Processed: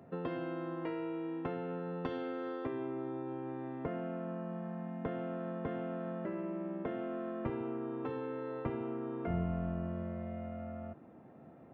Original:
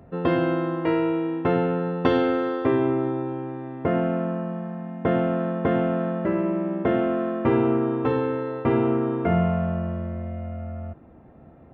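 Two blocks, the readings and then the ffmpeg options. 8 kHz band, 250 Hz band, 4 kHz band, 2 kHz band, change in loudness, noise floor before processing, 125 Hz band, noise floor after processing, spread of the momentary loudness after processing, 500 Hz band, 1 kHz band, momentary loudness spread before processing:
can't be measured, −15.0 dB, below −15 dB, −16.0 dB, −15.0 dB, −49 dBFS, −14.0 dB, −56 dBFS, 5 LU, −15.5 dB, −15.0 dB, 11 LU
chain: -filter_complex "[0:a]acrossover=split=110[link_01][link_02];[link_01]acrusher=bits=4:mix=0:aa=0.5[link_03];[link_02]acompressor=threshold=-32dB:ratio=5[link_04];[link_03][link_04]amix=inputs=2:normalize=0,volume=-5dB"

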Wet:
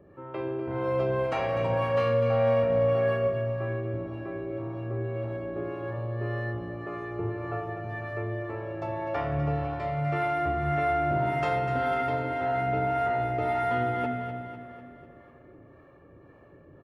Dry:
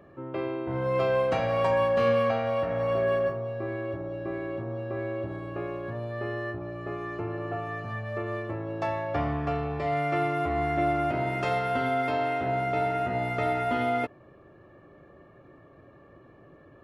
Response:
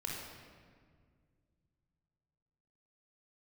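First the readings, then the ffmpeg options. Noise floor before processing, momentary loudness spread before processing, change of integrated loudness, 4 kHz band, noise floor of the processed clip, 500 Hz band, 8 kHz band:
−54 dBFS, 10 LU, 0.0 dB, −3.0 dB, −53 dBFS, 0.0 dB, can't be measured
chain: -filter_complex "[0:a]acrossover=split=530[link_01][link_02];[link_01]aeval=exprs='val(0)*(1-0.7/2+0.7/2*cos(2*PI*1.8*n/s))':channel_layout=same[link_03];[link_02]aeval=exprs='val(0)*(1-0.7/2-0.7/2*cos(2*PI*1.8*n/s))':channel_layout=same[link_04];[link_03][link_04]amix=inputs=2:normalize=0,aecho=1:1:249|498|747|996|1245|1494:0.335|0.178|0.0941|0.0499|0.0264|0.014,asplit=2[link_05][link_06];[1:a]atrim=start_sample=2205,lowpass=3000[link_07];[link_06][link_07]afir=irnorm=-1:irlink=0,volume=-2.5dB[link_08];[link_05][link_08]amix=inputs=2:normalize=0,volume=-2dB"

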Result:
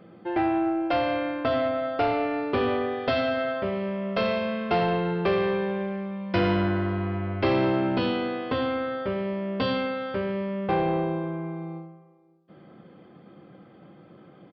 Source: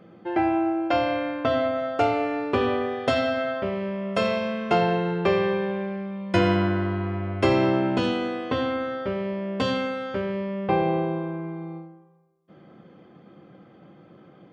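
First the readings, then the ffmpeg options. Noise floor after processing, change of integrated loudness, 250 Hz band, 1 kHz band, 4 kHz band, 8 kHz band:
−52 dBFS, −1.5 dB, −1.5 dB, −1.5 dB, −1.5 dB, can't be measured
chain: -filter_complex "[0:a]aresample=11025,asoftclip=type=tanh:threshold=-16.5dB,aresample=44100,asplit=2[link_01][link_02];[link_02]adelay=548.1,volume=-24dB,highshelf=frequency=4000:gain=-12.3[link_03];[link_01][link_03]amix=inputs=2:normalize=0"

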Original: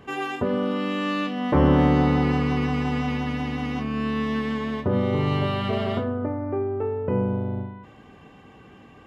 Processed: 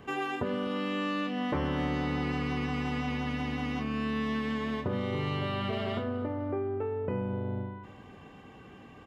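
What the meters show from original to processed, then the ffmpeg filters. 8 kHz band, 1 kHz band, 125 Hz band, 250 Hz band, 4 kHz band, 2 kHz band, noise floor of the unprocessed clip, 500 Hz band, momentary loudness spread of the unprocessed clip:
can't be measured, −7.0 dB, −9.5 dB, −8.5 dB, −4.5 dB, −4.5 dB, −49 dBFS, −8.0 dB, 9 LU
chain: -filter_complex "[0:a]acrossover=split=1500|3800[link_01][link_02][link_03];[link_01]acompressor=threshold=-28dB:ratio=4[link_04];[link_02]acompressor=threshold=-38dB:ratio=4[link_05];[link_03]acompressor=threshold=-52dB:ratio=4[link_06];[link_04][link_05][link_06]amix=inputs=3:normalize=0,aecho=1:1:249|498|747:0.126|0.0453|0.0163,volume=-2dB"

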